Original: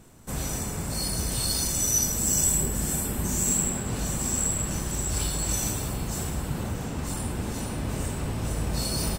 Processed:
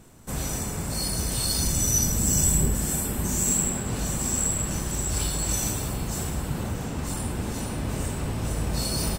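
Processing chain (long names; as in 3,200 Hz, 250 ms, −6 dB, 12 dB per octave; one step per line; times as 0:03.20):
0:01.57–0:02.75: bass and treble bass +6 dB, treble −1 dB
level +1 dB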